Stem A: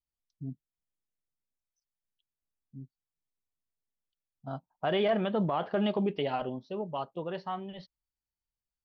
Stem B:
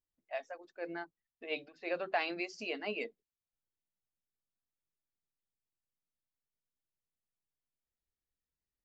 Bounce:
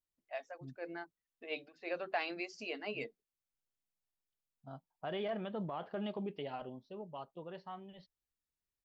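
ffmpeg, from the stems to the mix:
-filter_complex "[0:a]adelay=200,volume=0.282[s0];[1:a]volume=0.708[s1];[s0][s1]amix=inputs=2:normalize=0"

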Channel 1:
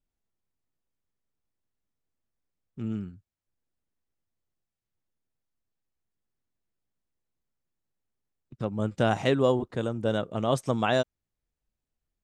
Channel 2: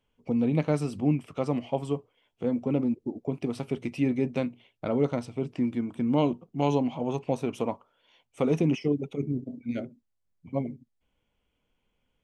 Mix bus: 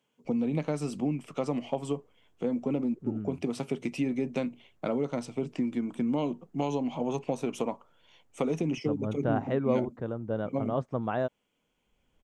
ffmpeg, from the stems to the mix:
-filter_complex "[0:a]lowpass=1400,acompressor=mode=upward:threshold=0.00631:ratio=2.5,adelay=250,volume=0.596[s0];[1:a]highpass=f=140:w=0.5412,highpass=f=140:w=1.3066,acompressor=threshold=0.0447:ratio=6,volume=1.19[s1];[s0][s1]amix=inputs=2:normalize=0,equalizer=f=7000:t=o:w=0.56:g=6"

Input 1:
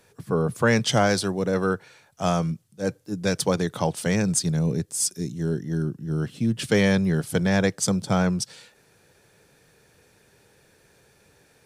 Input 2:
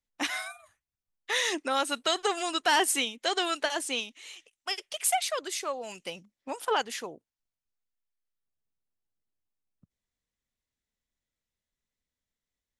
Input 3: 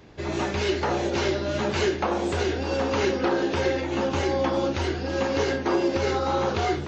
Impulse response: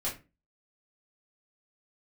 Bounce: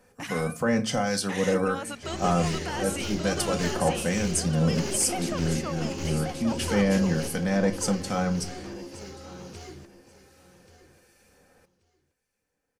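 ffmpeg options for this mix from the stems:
-filter_complex "[0:a]aecho=1:1:3.9:0.54,alimiter=limit=0.211:level=0:latency=1:release=22,acrossover=split=1600[s0][s1];[s0]aeval=exprs='val(0)*(1-0.5/2+0.5/2*cos(2*PI*1.3*n/s))':c=same[s2];[s1]aeval=exprs='val(0)*(1-0.5/2-0.5/2*cos(2*PI*1.3*n/s))':c=same[s3];[s2][s3]amix=inputs=2:normalize=0,volume=0.794,asplit=3[s4][s5][s6];[s5]volume=0.335[s7];[s6]volume=0.112[s8];[1:a]alimiter=level_in=1.12:limit=0.0631:level=0:latency=1,volume=0.891,volume=0.944,asplit=3[s9][s10][s11];[s10]volume=0.473[s12];[2:a]highshelf=f=3500:g=9,acrossover=split=370|3000[s13][s14][s15];[s14]acompressor=threshold=0.00562:ratio=2[s16];[s13][s16][s15]amix=inputs=3:normalize=0,aeval=exprs='clip(val(0),-1,0.0447)':c=same,adelay=1850,volume=0.422,asplit=3[s17][s18][s19];[s18]volume=0.376[s20];[s19]volume=0.531[s21];[s11]apad=whole_len=384652[s22];[s17][s22]sidechaingate=range=0.0224:threshold=0.00126:ratio=16:detection=peak[s23];[3:a]atrim=start_sample=2205[s24];[s7][s20]amix=inputs=2:normalize=0[s25];[s25][s24]afir=irnorm=-1:irlink=0[s26];[s8][s12][s21]amix=inputs=3:normalize=0,aecho=0:1:1132|2264|3396:1|0.19|0.0361[s27];[s4][s9][s23][s26][s27]amix=inputs=5:normalize=0,equalizer=f=3700:t=o:w=0.33:g=-8.5"

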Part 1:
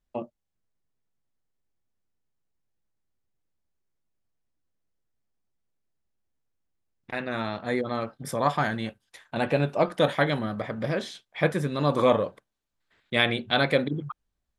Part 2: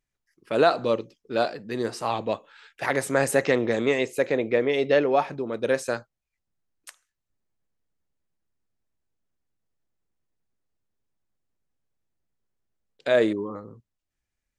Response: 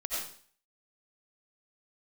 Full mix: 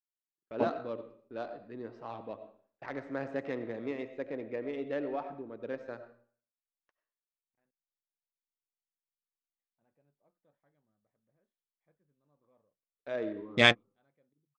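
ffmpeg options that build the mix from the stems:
-filter_complex "[0:a]adelay=450,volume=1.19,asplit=3[s0][s1][s2];[s0]atrim=end=7.71,asetpts=PTS-STARTPTS,afade=t=out:st=7.706:d=0.004:c=hsin[s3];[s1]atrim=start=7.71:end=9.56,asetpts=PTS-STARTPTS,volume=0[s4];[s2]atrim=start=9.56,asetpts=PTS-STARTPTS,afade=t=in:d=0.004:c=hsin[s5];[s3][s4][s5]concat=n=3:v=0:a=1[s6];[1:a]agate=range=0.0562:threshold=0.00891:ratio=16:detection=peak,adynamicequalizer=threshold=0.00631:dfrequency=280:dqfactor=5.7:tfrequency=280:tqfactor=5.7:attack=5:release=100:ratio=0.375:range=3.5:mode=boostabove:tftype=bell,volume=0.141,asplit=3[s7][s8][s9];[s8]volume=0.316[s10];[s9]apad=whole_len=663068[s11];[s6][s11]sidechaingate=range=0.00282:threshold=0.00112:ratio=16:detection=peak[s12];[2:a]atrim=start_sample=2205[s13];[s10][s13]afir=irnorm=-1:irlink=0[s14];[s12][s7][s14]amix=inputs=3:normalize=0,adynamicsmooth=sensitivity=3.5:basefreq=1800,lowpass=f=6500:w=0.5412,lowpass=f=6500:w=1.3066"

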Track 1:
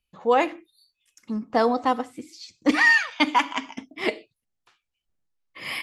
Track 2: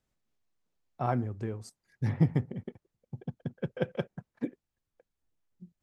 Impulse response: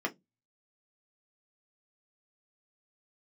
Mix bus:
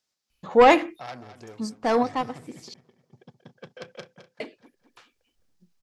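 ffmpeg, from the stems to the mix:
-filter_complex "[0:a]aeval=exprs='0.596*(cos(1*acos(clip(val(0)/0.596,-1,1)))-cos(1*PI/2))+0.188*(cos(5*acos(clip(val(0)/0.596,-1,1)))-cos(5*PI/2))':c=same,adelay=300,volume=0.944,asplit=3[s0][s1][s2];[s0]atrim=end=2.74,asetpts=PTS-STARTPTS,afade=t=out:st=2.736:d=0.004:c=hsin[s3];[s1]atrim=start=2.74:end=4.4,asetpts=PTS-STARTPTS,volume=0[s4];[s2]atrim=start=4.4,asetpts=PTS-STARTPTS,afade=t=in:d=0.004:c=hsin[s5];[s3][s4][s5]concat=n=3:v=0:a=1[s6];[1:a]asoftclip=type=tanh:threshold=0.0335,highpass=f=630:p=1,equalizer=f=5100:t=o:w=1.1:g=12.5,volume=1.06,asplit=3[s7][s8][s9];[s8]volume=0.282[s10];[s9]apad=whole_len=274489[s11];[s6][s11]sidechaincompress=threshold=0.00282:ratio=8:attack=16:release=465[s12];[s10]aecho=0:1:211|422|633|844|1055:1|0.39|0.152|0.0593|0.0231[s13];[s12][s7][s13]amix=inputs=3:normalize=0"

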